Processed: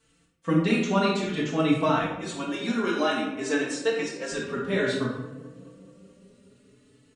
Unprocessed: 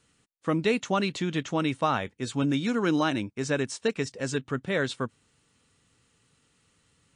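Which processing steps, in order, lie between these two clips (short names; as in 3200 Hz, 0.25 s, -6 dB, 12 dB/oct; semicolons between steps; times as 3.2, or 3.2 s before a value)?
2.01–4.32 HPF 310 Hz 12 dB/oct; darkening echo 0.214 s, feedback 80%, low-pass 1200 Hz, level -19 dB; reverb RT60 0.80 s, pre-delay 4 ms, DRR -3 dB; endless flanger 4.1 ms +0.55 Hz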